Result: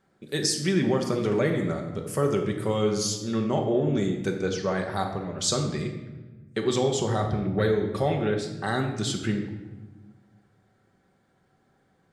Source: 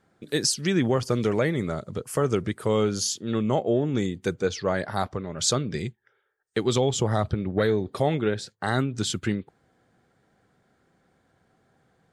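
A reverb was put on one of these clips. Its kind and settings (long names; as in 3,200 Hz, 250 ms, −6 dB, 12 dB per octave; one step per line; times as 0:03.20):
rectangular room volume 770 cubic metres, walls mixed, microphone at 1.1 metres
level −3 dB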